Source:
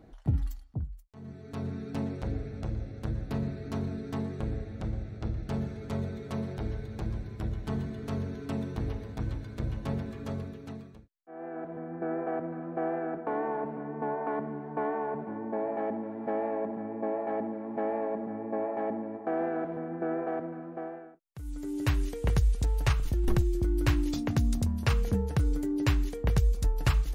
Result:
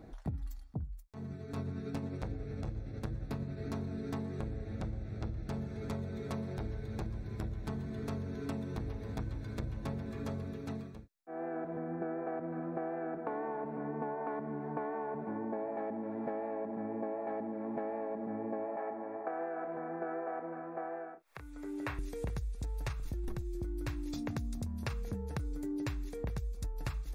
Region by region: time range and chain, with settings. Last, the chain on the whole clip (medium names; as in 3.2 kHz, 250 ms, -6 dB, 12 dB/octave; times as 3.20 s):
1.24–3.59 s: tremolo 11 Hz, depth 38% + doubling 21 ms -12 dB
18.76–21.99 s: upward compressor, threshold -36 dBFS + three-band isolator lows -14 dB, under 460 Hz, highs -14 dB, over 2.7 kHz + doubling 30 ms -8.5 dB
whole clip: band-stop 3 kHz, Q 8.3; compression 10:1, threshold -37 dBFS; trim +2.5 dB